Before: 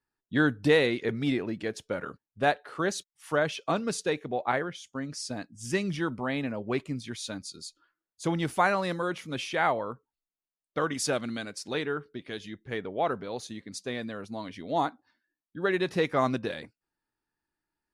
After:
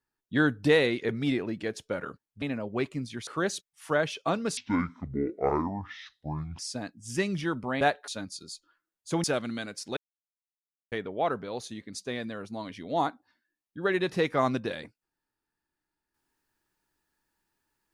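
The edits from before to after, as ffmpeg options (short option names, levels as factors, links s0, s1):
-filter_complex "[0:a]asplit=10[s0][s1][s2][s3][s4][s5][s6][s7][s8][s9];[s0]atrim=end=2.422[s10];[s1]atrim=start=6.358:end=7.212[s11];[s2]atrim=start=2.688:end=3.994[s12];[s3]atrim=start=3.99:end=5.14,asetpts=PTS-STARTPTS,asetrate=25137,aresample=44100[s13];[s4]atrim=start=5.136:end=6.362[s14];[s5]atrim=start=2.418:end=2.692[s15];[s6]atrim=start=7.208:end=8.372[s16];[s7]atrim=start=11.028:end=11.76,asetpts=PTS-STARTPTS,afade=t=out:st=0.728:d=0.004:c=hsin[s17];[s8]atrim=start=11.76:end=12.71,asetpts=PTS-STARTPTS,volume=0[s18];[s9]atrim=start=12.71,asetpts=PTS-STARTPTS,afade=t=in:d=0.004:c=hsin[s19];[s10][s11]acrossfade=d=0.004:c1=hsin:c2=hsin[s20];[s20][s12]acrossfade=d=0.004:c1=hsin:c2=hsin[s21];[s21][s13]acrossfade=d=0.004:c1=hsin:c2=hsin[s22];[s22][s14]acrossfade=d=0.004:c1=hsin:c2=hsin[s23];[s23][s15]acrossfade=d=0.004:c1=hsin:c2=hsin[s24];[s24][s16]acrossfade=d=0.004:c1=hsin:c2=hsin[s25];[s17][s18][s19]concat=n=3:v=0:a=1[s26];[s25][s26]acrossfade=d=0.004:c1=hsin:c2=hsin"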